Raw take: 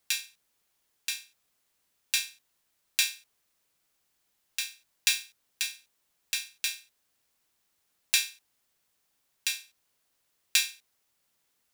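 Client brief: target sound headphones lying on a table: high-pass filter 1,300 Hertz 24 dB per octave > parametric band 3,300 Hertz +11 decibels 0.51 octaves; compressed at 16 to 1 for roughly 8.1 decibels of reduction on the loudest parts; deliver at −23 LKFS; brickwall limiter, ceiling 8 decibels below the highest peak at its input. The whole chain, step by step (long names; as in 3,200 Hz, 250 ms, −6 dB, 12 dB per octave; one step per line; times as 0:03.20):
downward compressor 16 to 1, threshold −29 dBFS
brickwall limiter −13.5 dBFS
high-pass filter 1,300 Hz 24 dB per octave
parametric band 3,300 Hz +11 dB 0.51 octaves
level +13 dB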